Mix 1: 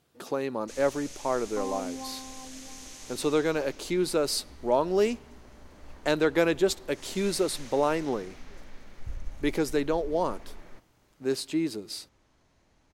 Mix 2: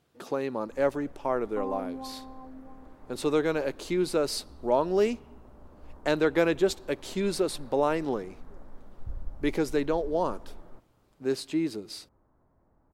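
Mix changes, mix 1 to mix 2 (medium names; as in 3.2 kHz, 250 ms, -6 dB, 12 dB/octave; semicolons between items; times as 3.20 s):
first sound: add low-pass 1.3 kHz 24 dB/octave; master: add treble shelf 4 kHz -5.5 dB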